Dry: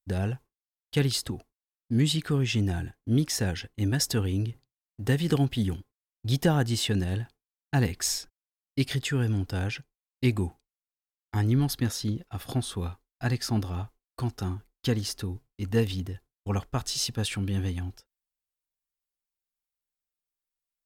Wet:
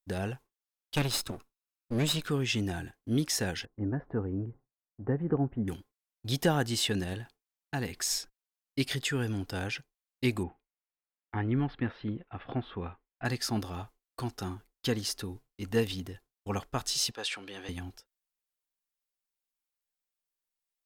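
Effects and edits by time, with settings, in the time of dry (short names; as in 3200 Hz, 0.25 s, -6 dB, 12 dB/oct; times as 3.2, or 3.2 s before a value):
0.95–2.28 minimum comb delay 0.78 ms
3.65–5.68 Bessel low-pass 930 Hz, order 6
7.13–8.11 compressor 1.5:1, threshold -32 dBFS
10.43–13.25 inverse Chebyshev low-pass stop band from 6500 Hz, stop band 50 dB
17.11–17.69 three-band isolator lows -23 dB, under 370 Hz, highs -16 dB, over 7200 Hz
whole clip: de-esser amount 45%; bell 72 Hz -9.5 dB 2.8 oct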